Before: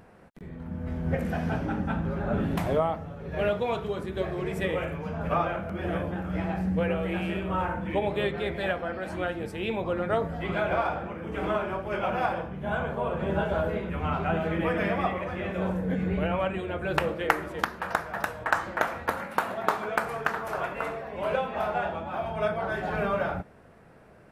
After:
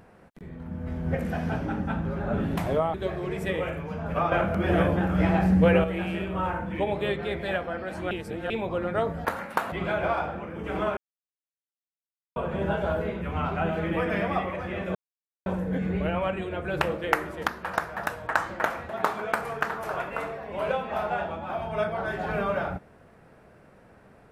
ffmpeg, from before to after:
-filter_complex "[0:a]asplit=12[s0][s1][s2][s3][s4][s5][s6][s7][s8][s9][s10][s11];[s0]atrim=end=2.942[s12];[s1]atrim=start=4.088:end=5.472[s13];[s2]atrim=start=5.468:end=6.992,asetpts=PTS-STARTPTS,volume=2.37[s14];[s3]atrim=start=6.988:end=9.262[s15];[s4]atrim=start=9.258:end=9.652,asetpts=PTS-STARTPTS,areverse[s16];[s5]atrim=start=9.648:end=10.402[s17];[s6]atrim=start=19.058:end=19.532[s18];[s7]atrim=start=10.398:end=11.65,asetpts=PTS-STARTPTS,afade=t=out:st=1.248:d=0.004:c=hsin[s19];[s8]atrim=start=11.65:end=13.04,asetpts=PTS-STARTPTS,volume=0[s20];[s9]atrim=start=13.04:end=15.63,asetpts=PTS-STARTPTS,afade=t=in:d=0.004:c=hsin,afade=t=out:st=2.586:d=0.004:c=hsin,apad=pad_dur=0.51[s21];[s10]atrim=start=15.63:end=19.062,asetpts=PTS-STARTPTS,afade=t=in:d=0.004:c=hsin[s22];[s11]atrim=start=19.528[s23];[s12][s13]acrossfade=d=0.004:c1=hsin:c2=hsin[s24];[s24][s14]acrossfade=d=0.004:c1=hsin:c2=hsin[s25];[s25][s15]acrossfade=d=0.004:c1=hsin:c2=hsin[s26];[s26][s16]acrossfade=d=0.004:c1=hsin:c2=hsin[s27];[s27][s17]acrossfade=d=0.004:c1=hsin:c2=hsin[s28];[s28][s18]acrossfade=d=0.004:c1=hsin:c2=hsin[s29];[s19][s20][s21][s22]concat=n=4:v=0:a=1[s30];[s29][s30]acrossfade=d=0.004:c1=hsin:c2=hsin[s31];[s31][s23]acrossfade=d=0.004:c1=hsin:c2=hsin"

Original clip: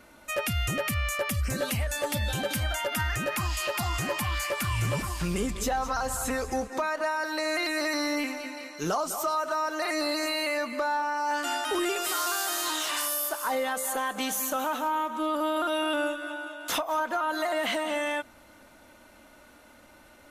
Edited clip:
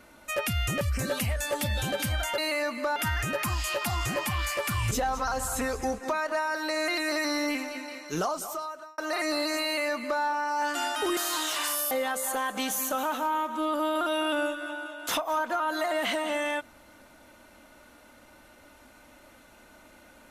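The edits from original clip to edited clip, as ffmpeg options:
-filter_complex "[0:a]asplit=8[s0][s1][s2][s3][s4][s5][s6][s7];[s0]atrim=end=0.812[s8];[s1]atrim=start=1.318:end=2.892[s9];[s2]atrim=start=10.328:end=10.912[s10];[s3]atrim=start=2.888:end=4.842[s11];[s4]atrim=start=5.598:end=9.67,asetpts=PTS-STARTPTS,afade=t=out:st=3.252:d=0.82[s12];[s5]atrim=start=9.67:end=11.862,asetpts=PTS-STARTPTS,afade=t=in:d=0.004:c=hsin[s13];[s6]atrim=start=12.498:end=13.242[s14];[s7]atrim=start=13.518[s15];[s8][s9]acrossfade=d=0.004:c1=hsin:c2=hsin[s16];[s16][s10]acrossfade=d=0.004:c1=hsin:c2=hsin[s17];[s17][s11]acrossfade=d=0.004:c1=hsin:c2=hsin[s18];[s12][s13]concat=n=2:v=0:a=1[s19];[s18][s19]acrossfade=d=0.004:c1=hsin:c2=hsin[s20];[s20][s14]acrossfade=d=0.004:c1=hsin:c2=hsin[s21];[s21][s15]acrossfade=d=0.004:c1=hsin:c2=hsin"

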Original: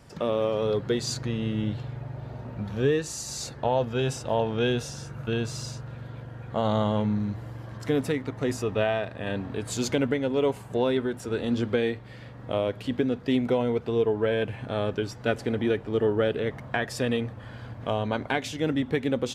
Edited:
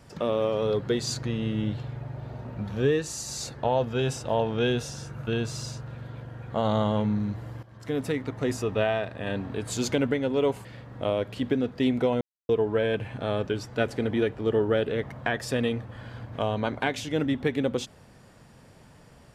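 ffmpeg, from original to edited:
-filter_complex "[0:a]asplit=5[s0][s1][s2][s3][s4];[s0]atrim=end=7.63,asetpts=PTS-STARTPTS,afade=t=out:st=7.626:d=0.004:c=hsin:silence=0.177828[s5];[s1]atrim=start=7.63:end=10.652,asetpts=PTS-STARTPTS,afade=t=in:d=0.57:silence=0.177828[s6];[s2]atrim=start=12.128:end=13.69,asetpts=PTS-STARTPTS,afade=t=out:st=1.558:d=0.004:c=hsin[s7];[s3]atrim=start=13.69:end=13.97,asetpts=PTS-STARTPTS,volume=0[s8];[s4]atrim=start=13.97,asetpts=PTS-STARTPTS,afade=t=in:d=0.004:c=hsin[s9];[s5][s6]concat=n=2:v=0:a=1[s10];[s7][s8][s9]concat=n=3:v=0:a=1[s11];[s10][s11]acrossfade=d=0.004:c1=hsin:c2=hsin"

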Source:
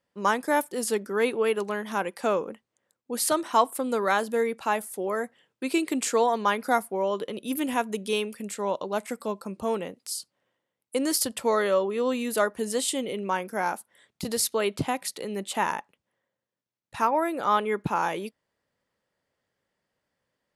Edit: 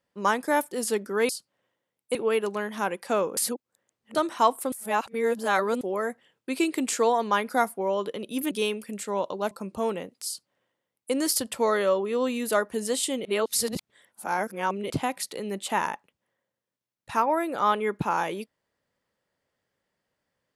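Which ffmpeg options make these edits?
-filter_complex "[0:a]asplit=11[s0][s1][s2][s3][s4][s5][s6][s7][s8][s9][s10];[s0]atrim=end=1.292[s11];[s1]atrim=start=10.118:end=10.982[s12];[s2]atrim=start=1.288:end=2.512[s13];[s3]atrim=start=2.508:end=3.292,asetpts=PTS-STARTPTS,areverse[s14];[s4]atrim=start=3.288:end=3.862[s15];[s5]atrim=start=3.858:end=4.952,asetpts=PTS-STARTPTS,areverse[s16];[s6]atrim=start=4.948:end=7.652[s17];[s7]atrim=start=8.018:end=9.022[s18];[s8]atrim=start=9.358:end=13.102[s19];[s9]atrim=start=13.098:end=14.752,asetpts=PTS-STARTPTS,areverse[s20];[s10]atrim=start=14.748[s21];[s11][s12]acrossfade=d=0.004:c1=hsin:c2=hsin[s22];[s22][s13]acrossfade=d=0.004:c1=hsin:c2=hsin[s23];[s23][s14]acrossfade=d=0.004:c1=hsin:c2=hsin[s24];[s24][s15]acrossfade=d=0.004:c1=hsin:c2=hsin[s25];[s25][s16]acrossfade=d=0.004:c1=hsin:c2=hsin[s26];[s26][s17]acrossfade=d=0.004:c1=hsin:c2=hsin[s27];[s27][s18]acrossfade=d=0.004:c1=hsin:c2=hsin[s28];[s28][s19]acrossfade=d=0.004:c1=hsin:c2=hsin[s29];[s29][s20]acrossfade=d=0.004:c1=hsin:c2=hsin[s30];[s30][s21]acrossfade=d=0.004:c1=hsin:c2=hsin"

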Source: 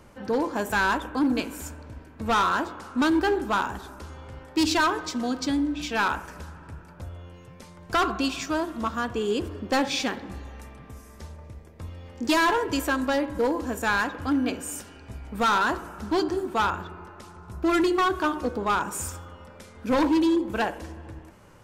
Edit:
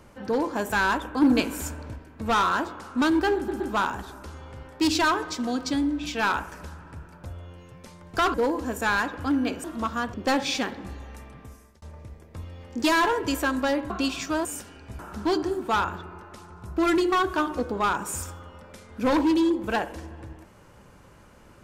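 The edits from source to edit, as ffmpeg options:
-filter_complex "[0:a]asplit=12[s0][s1][s2][s3][s4][s5][s6][s7][s8][s9][s10][s11];[s0]atrim=end=1.222[s12];[s1]atrim=start=1.218:end=1.962,asetpts=PTS-STARTPTS,volume=1.68[s13];[s2]atrim=start=1.958:end=3.482[s14];[s3]atrim=start=3.358:end=3.482[s15];[s4]atrim=start=3.358:end=8.102[s16];[s5]atrim=start=13.348:end=14.652[s17];[s6]atrim=start=8.648:end=9.152[s18];[s7]atrim=start=9.588:end=11.27,asetpts=PTS-STARTPTS,afade=t=out:st=1.152:d=0.53:c=qsin[s19];[s8]atrim=start=11.27:end=13.352,asetpts=PTS-STARTPTS,afade=t=in:d=0.004:c=hsin[s20];[s9]atrim=start=8.098:end=8.652[s21];[s10]atrim=start=14.648:end=15.192[s22];[s11]atrim=start=15.848[s23];[s12][s13]acrossfade=d=0.004:c1=hsin:c2=hsin[s24];[s24][s14]acrossfade=d=0.004:c1=hsin:c2=hsin[s25];[s25][s15]acrossfade=d=0.004:c1=hsin:c2=hsin[s26];[s26][s16]acrossfade=d=0.004:c1=hsin:c2=hsin[s27];[s27][s17]acrossfade=d=0.004:c1=hsin:c2=hsin[s28];[s28][s18]acrossfade=d=0.004:c1=hsin:c2=hsin[s29];[s19][s20]concat=n=2:v=0:a=1[s30];[s29][s30]acrossfade=d=0.004:c1=hsin:c2=hsin[s31];[s31][s21]acrossfade=d=0.004:c1=hsin:c2=hsin[s32];[s32][s22]acrossfade=d=0.004:c1=hsin:c2=hsin[s33];[s33][s23]acrossfade=d=0.004:c1=hsin:c2=hsin"

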